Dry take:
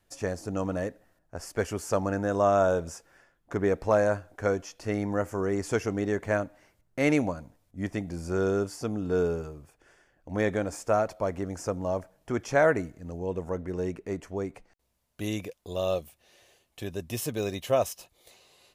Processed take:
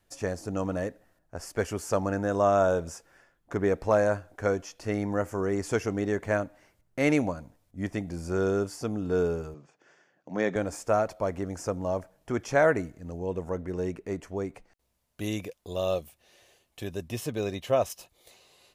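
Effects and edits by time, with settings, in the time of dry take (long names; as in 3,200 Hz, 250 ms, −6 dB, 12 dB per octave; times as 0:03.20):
0:09.54–0:10.56: elliptic band-pass filter 150–6,600 Hz
0:17.08–0:17.90: high-shelf EQ 6,600 Hz −9 dB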